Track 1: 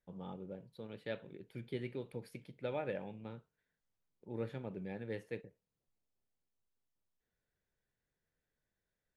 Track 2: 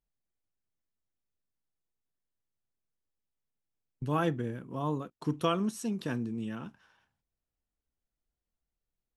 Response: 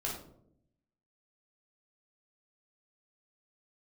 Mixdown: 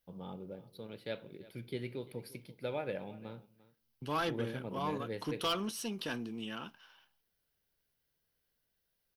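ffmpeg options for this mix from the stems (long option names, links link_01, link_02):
-filter_complex "[0:a]volume=0.5dB,asplit=3[link_01][link_02][link_03];[link_02]volume=-21.5dB[link_04];[link_03]volume=-19dB[link_05];[1:a]equalizer=frequency=3000:width_type=o:width=0.23:gain=10,asplit=2[link_06][link_07];[link_07]highpass=frequency=720:poles=1,volume=19dB,asoftclip=type=tanh:threshold=-14.5dB[link_08];[link_06][link_08]amix=inputs=2:normalize=0,lowpass=frequency=3500:poles=1,volume=-6dB,volume=-10dB[link_09];[2:a]atrim=start_sample=2205[link_10];[link_04][link_10]afir=irnorm=-1:irlink=0[link_11];[link_05]aecho=0:1:346:1[link_12];[link_01][link_09][link_11][link_12]amix=inputs=4:normalize=0,highshelf=frequency=3800:gain=6,bandreject=frequency=1800:width=17,aexciter=amount=1:drive=6:freq=4100"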